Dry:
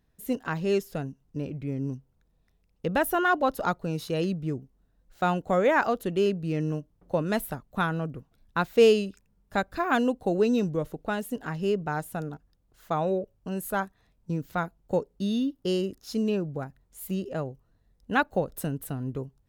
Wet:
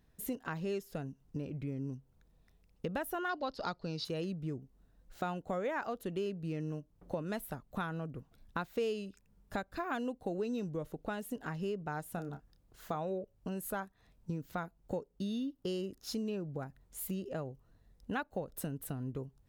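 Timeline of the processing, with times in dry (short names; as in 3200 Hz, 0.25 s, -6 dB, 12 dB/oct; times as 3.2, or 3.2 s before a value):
3.29–4.05 synth low-pass 4700 Hz, resonance Q 7.2
12.12–12.96 doubler 29 ms -10 dB
whole clip: compressor 3:1, threshold -40 dBFS; gain +1.5 dB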